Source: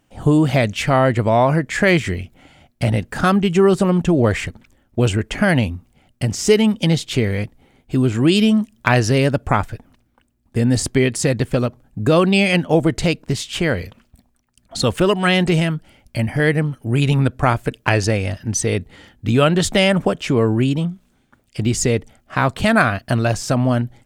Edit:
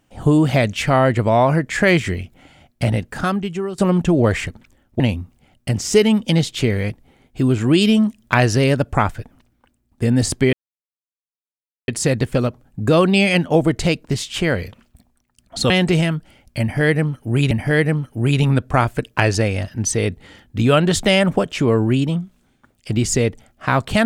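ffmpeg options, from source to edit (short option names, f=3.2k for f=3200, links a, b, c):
-filter_complex "[0:a]asplit=6[a][b][c][d][e][f];[a]atrim=end=3.78,asetpts=PTS-STARTPTS,afade=t=out:st=2.83:d=0.95:silence=0.141254[g];[b]atrim=start=3.78:end=5.002,asetpts=PTS-STARTPTS,afade=t=in:d=0.004:c=hsin:silence=0.141254[h];[c]atrim=start=5.538:end=11.07,asetpts=PTS-STARTPTS,afade=t=out:st=5.528:d=0.004:c=hsin,apad=pad_dur=1.35[i];[d]atrim=start=11.07:end=14.892,asetpts=PTS-STARTPTS,afade=t=in:d=0.004:c=hsin[j];[e]atrim=start=15.288:end=17.102[k];[f]atrim=start=16.198[l];[g][h]concat=n=2:v=0:a=1[m];[i][j]concat=n=2:v=0:a=1[n];[m][n]acrossfade=d=0.004:c1=hsin:c2=hsin[o];[o][k]acrossfade=d=0.004:c1=hsin:c2=hsin[p];[p][l]acrossfade=d=0.004:c1=hsin:c2=hsin"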